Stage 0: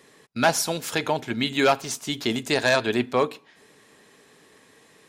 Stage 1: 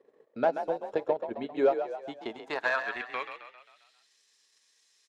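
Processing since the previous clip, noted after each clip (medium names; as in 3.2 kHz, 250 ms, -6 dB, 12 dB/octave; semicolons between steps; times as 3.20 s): band-pass sweep 500 Hz -> 5.5 kHz, 1.83–4.16 s; transient shaper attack +5 dB, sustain -11 dB; frequency-shifting echo 133 ms, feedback 51%, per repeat +41 Hz, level -9 dB; trim -2 dB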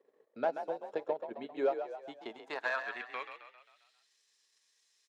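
high-pass 250 Hz 6 dB/octave; trim -5.5 dB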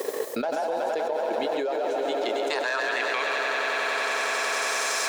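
tone controls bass -10 dB, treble +14 dB; on a send: echo with a slow build-up 93 ms, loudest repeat 5, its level -14.5 dB; on the sum: level flattener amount 100%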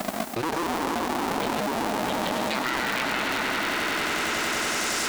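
cycle switcher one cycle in 2, inverted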